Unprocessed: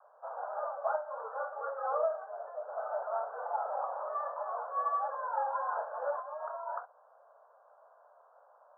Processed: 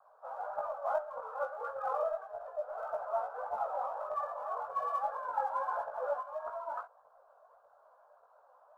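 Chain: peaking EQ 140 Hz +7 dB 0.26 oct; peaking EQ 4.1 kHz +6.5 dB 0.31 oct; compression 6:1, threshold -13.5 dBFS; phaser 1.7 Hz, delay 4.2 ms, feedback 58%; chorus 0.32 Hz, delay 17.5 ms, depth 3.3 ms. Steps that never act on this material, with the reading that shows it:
peaking EQ 140 Hz: input has nothing below 400 Hz; peaking EQ 4.1 kHz: input has nothing above 1.8 kHz; compression, threshold -13.5 dBFS: peak at its input -20.0 dBFS

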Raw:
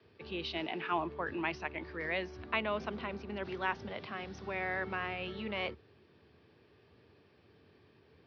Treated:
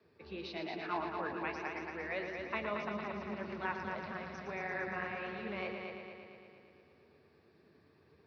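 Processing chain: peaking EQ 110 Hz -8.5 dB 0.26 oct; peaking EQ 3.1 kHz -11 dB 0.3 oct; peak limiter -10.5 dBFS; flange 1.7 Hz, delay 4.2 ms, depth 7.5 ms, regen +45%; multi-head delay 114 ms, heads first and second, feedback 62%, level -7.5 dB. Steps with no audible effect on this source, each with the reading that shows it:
peak limiter -10.5 dBFS: peak at its input -18.5 dBFS

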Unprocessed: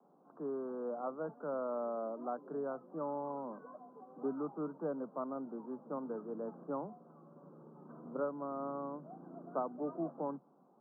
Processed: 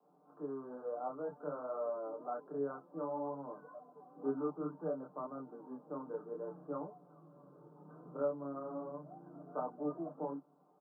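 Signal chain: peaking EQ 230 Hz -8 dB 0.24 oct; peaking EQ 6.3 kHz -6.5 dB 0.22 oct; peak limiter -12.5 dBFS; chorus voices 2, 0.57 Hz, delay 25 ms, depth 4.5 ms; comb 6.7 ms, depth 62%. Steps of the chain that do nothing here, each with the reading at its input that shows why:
peaking EQ 6.3 kHz: input has nothing above 1.5 kHz; peak limiter -12.5 dBFS: peak at its input -24.0 dBFS

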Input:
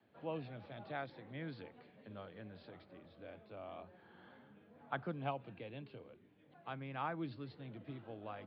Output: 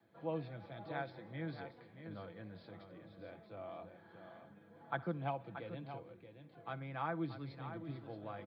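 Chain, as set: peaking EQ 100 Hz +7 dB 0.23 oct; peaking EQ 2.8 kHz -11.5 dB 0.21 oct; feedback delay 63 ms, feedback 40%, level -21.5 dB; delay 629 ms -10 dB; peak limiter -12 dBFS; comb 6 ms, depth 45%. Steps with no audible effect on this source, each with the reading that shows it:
peak limiter -12 dBFS: peak at its input -24.0 dBFS

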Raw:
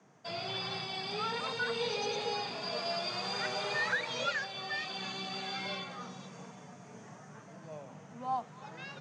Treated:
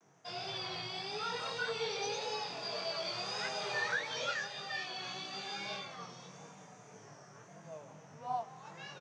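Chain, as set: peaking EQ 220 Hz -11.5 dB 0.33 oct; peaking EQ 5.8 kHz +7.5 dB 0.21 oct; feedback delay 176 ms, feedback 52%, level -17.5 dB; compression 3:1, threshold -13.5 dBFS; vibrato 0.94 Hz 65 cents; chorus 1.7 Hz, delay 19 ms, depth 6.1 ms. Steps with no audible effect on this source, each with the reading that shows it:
compression, threshold -13.5 dBFS: peak at its input -20.5 dBFS

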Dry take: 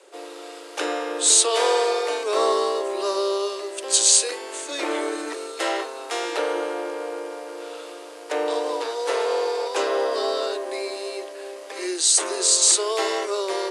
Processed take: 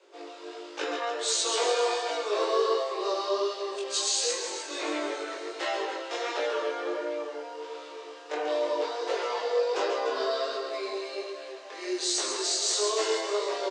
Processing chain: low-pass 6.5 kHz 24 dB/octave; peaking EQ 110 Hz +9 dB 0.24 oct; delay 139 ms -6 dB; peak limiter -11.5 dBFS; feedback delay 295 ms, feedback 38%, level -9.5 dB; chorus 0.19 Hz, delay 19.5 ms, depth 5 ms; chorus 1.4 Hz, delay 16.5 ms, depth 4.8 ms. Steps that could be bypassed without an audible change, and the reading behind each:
peaking EQ 110 Hz: input has nothing below 250 Hz

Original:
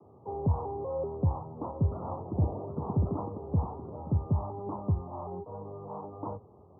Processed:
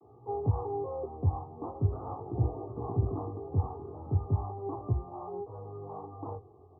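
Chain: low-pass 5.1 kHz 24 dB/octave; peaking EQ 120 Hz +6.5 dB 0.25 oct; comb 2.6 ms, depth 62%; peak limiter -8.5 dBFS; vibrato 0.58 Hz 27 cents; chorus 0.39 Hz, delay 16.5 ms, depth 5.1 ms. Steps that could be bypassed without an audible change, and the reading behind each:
low-pass 5.1 kHz: input has nothing above 1.1 kHz; peak limiter -8.5 dBFS: peak at its input -14.0 dBFS

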